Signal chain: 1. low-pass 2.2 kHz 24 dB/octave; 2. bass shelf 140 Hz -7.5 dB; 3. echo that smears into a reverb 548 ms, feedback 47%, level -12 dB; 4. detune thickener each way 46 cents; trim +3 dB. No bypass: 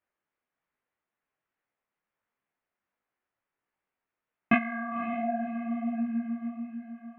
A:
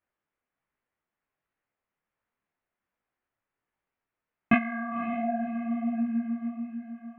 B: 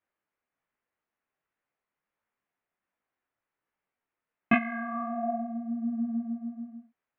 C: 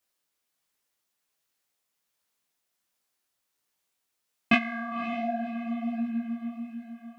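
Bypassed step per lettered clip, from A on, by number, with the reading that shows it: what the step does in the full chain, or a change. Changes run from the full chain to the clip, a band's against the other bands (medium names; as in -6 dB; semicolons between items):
2, 125 Hz band +2.5 dB; 3, momentary loudness spread change +3 LU; 1, 2 kHz band +2.5 dB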